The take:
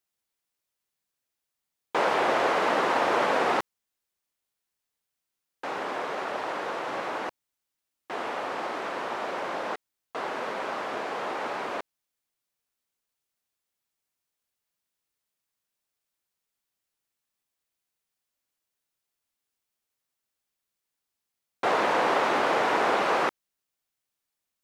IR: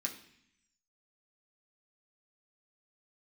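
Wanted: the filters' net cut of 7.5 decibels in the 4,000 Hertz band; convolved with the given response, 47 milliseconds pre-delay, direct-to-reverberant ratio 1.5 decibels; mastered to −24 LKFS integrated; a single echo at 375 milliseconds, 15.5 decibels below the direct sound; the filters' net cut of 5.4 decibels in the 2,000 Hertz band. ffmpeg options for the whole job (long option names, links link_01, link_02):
-filter_complex "[0:a]equalizer=frequency=2000:width_type=o:gain=-5.5,equalizer=frequency=4000:width_type=o:gain=-8,aecho=1:1:375:0.168,asplit=2[link_01][link_02];[1:a]atrim=start_sample=2205,adelay=47[link_03];[link_02][link_03]afir=irnorm=-1:irlink=0,volume=-2dB[link_04];[link_01][link_04]amix=inputs=2:normalize=0,volume=3.5dB"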